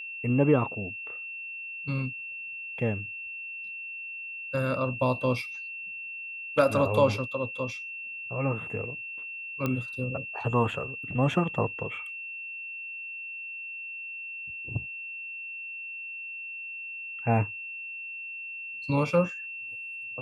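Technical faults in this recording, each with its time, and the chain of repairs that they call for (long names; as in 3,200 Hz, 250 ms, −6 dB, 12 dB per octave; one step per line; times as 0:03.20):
whistle 2,700 Hz −36 dBFS
0:09.66: click −16 dBFS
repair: click removal
notch filter 2,700 Hz, Q 30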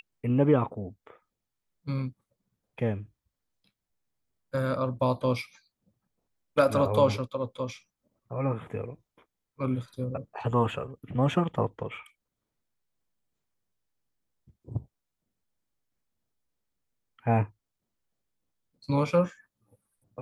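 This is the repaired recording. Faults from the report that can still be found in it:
none of them is left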